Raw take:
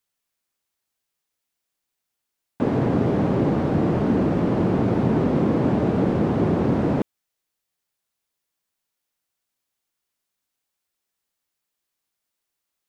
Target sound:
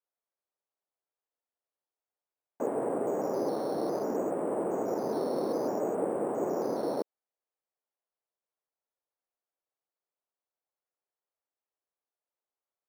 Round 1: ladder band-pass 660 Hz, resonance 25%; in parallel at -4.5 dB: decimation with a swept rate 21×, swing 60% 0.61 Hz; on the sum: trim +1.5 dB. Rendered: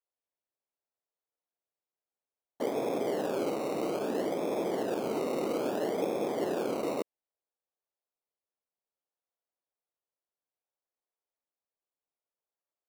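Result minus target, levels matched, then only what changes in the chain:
decimation with a swept rate: distortion +12 dB
change: decimation with a swept rate 7×, swing 60% 0.61 Hz

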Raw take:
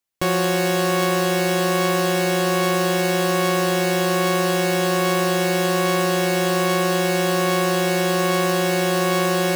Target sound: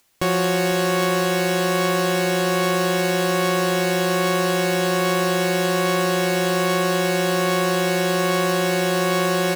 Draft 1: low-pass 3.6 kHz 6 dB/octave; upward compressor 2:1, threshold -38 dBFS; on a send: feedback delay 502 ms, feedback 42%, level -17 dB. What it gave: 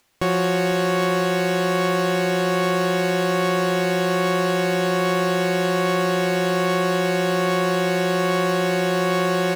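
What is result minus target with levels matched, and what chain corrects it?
8 kHz band -5.0 dB
low-pass 13 kHz 6 dB/octave; upward compressor 2:1, threshold -38 dBFS; on a send: feedback delay 502 ms, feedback 42%, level -17 dB

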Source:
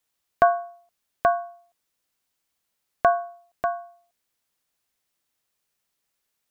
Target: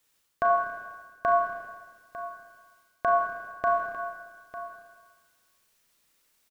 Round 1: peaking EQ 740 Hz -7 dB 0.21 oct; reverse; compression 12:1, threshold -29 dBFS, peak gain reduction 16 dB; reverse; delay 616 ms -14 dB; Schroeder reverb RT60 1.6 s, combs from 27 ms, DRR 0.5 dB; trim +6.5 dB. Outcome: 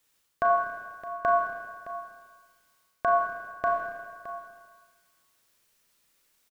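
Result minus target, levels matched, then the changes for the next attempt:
echo 284 ms early
change: delay 900 ms -14 dB

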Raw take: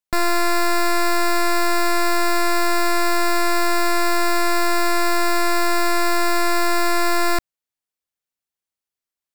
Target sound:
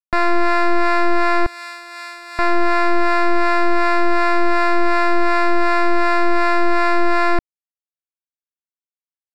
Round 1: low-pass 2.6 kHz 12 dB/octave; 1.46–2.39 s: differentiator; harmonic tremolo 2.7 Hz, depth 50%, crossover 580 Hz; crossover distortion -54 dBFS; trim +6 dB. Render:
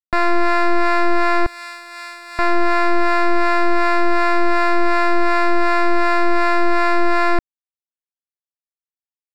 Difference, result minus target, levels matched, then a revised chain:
crossover distortion: distortion +6 dB
low-pass 2.6 kHz 12 dB/octave; 1.46–2.39 s: differentiator; harmonic tremolo 2.7 Hz, depth 50%, crossover 580 Hz; crossover distortion -60.5 dBFS; trim +6 dB

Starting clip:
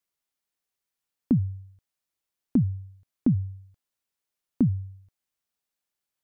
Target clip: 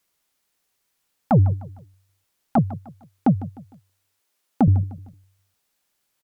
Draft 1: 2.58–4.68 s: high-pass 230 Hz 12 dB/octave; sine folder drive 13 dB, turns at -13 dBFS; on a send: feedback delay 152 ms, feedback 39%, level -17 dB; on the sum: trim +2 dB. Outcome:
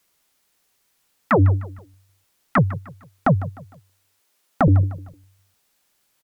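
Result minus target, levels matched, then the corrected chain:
sine folder: distortion +15 dB
2.58–4.68 s: high-pass 230 Hz 12 dB/octave; sine folder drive 7 dB, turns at -13 dBFS; on a send: feedback delay 152 ms, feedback 39%, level -17 dB; on the sum: trim +2 dB

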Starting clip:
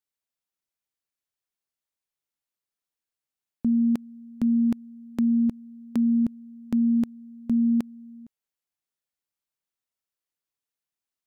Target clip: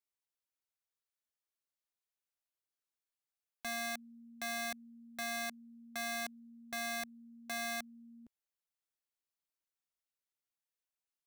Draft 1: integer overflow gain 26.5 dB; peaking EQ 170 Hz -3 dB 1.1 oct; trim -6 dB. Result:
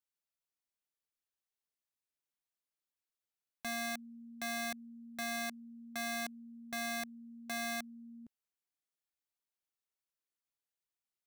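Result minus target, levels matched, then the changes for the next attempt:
125 Hz band +4.0 dB
change: peaking EQ 170 Hz -10.5 dB 1.1 oct

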